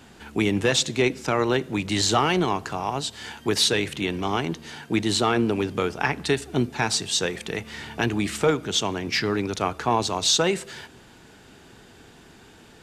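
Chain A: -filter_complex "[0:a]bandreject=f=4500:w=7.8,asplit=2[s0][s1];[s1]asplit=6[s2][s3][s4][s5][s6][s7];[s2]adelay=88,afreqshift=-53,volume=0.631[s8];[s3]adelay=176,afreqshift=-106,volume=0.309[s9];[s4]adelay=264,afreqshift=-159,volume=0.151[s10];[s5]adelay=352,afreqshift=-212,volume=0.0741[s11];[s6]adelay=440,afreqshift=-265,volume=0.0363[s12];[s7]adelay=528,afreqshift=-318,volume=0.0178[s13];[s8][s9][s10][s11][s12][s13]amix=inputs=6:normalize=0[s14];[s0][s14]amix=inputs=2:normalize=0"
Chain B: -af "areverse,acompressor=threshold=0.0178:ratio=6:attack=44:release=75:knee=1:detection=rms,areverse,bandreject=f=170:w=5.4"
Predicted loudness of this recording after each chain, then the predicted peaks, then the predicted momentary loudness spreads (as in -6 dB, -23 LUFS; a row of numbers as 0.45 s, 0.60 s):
-22.5 LUFS, -34.5 LUFS; -6.5 dBFS, -19.0 dBFS; 9 LU, 17 LU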